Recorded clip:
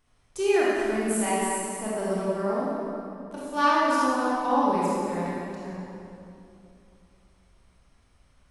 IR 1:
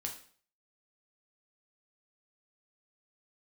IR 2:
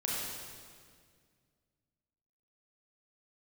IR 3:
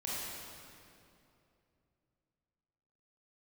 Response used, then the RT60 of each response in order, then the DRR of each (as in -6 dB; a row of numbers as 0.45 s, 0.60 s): 3; 0.50 s, 2.0 s, 2.7 s; 1.0 dB, -5.5 dB, -7.5 dB